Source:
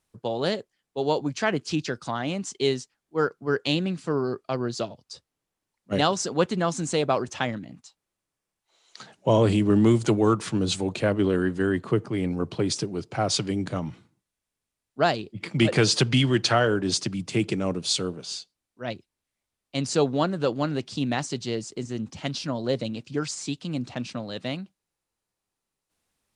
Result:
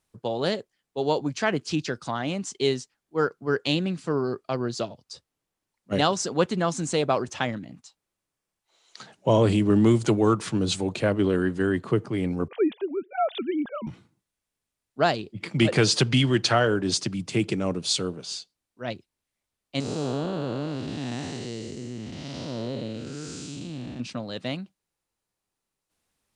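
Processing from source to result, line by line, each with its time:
12.48–13.87 s: formants replaced by sine waves
19.80–24.00 s: spectral blur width 357 ms

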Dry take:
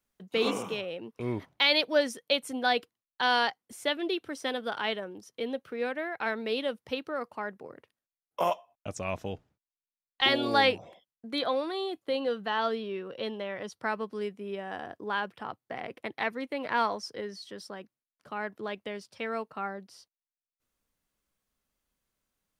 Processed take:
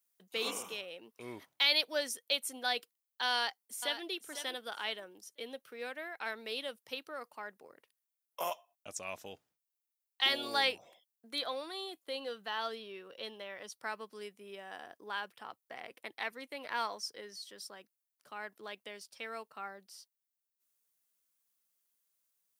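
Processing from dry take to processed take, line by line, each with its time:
3.32–4.04 s: echo throw 500 ms, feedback 20%, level -10 dB
whole clip: RIAA curve recording; trim -8.5 dB

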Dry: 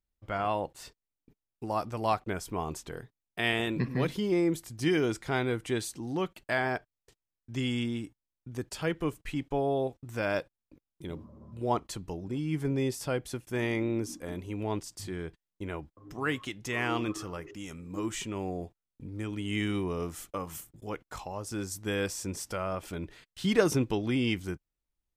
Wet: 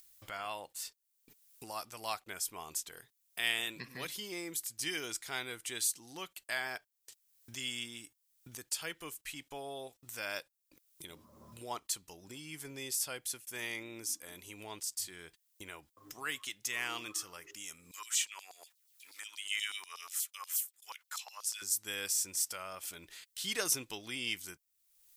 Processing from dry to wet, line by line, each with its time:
17.91–21.62 s: LFO high-pass saw down 8.3 Hz 830–4800 Hz
whole clip: pre-emphasis filter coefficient 0.97; upward compressor, threshold -50 dBFS; trim +7 dB

